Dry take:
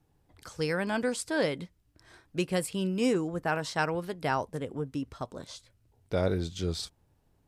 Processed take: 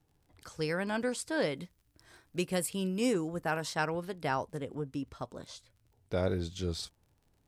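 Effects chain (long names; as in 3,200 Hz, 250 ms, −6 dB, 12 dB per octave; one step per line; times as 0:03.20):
0:01.55–0:03.75: high-shelf EQ 9,600 Hz +10.5 dB
surface crackle 51 per second −53 dBFS
level −3 dB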